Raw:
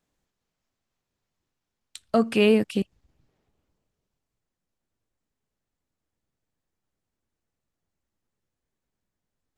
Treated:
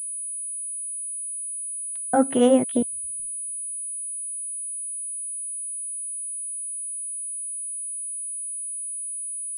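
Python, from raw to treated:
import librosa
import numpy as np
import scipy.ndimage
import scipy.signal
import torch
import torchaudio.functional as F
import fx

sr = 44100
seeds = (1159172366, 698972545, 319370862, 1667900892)

y = fx.pitch_glide(x, sr, semitones=11.5, runs='starting unshifted')
y = fx.filter_lfo_lowpass(y, sr, shape='saw_up', hz=0.31, low_hz=450.0, high_hz=2500.0, q=0.74)
y = fx.pwm(y, sr, carrier_hz=9900.0)
y = F.gain(torch.from_numpy(y), 3.5).numpy()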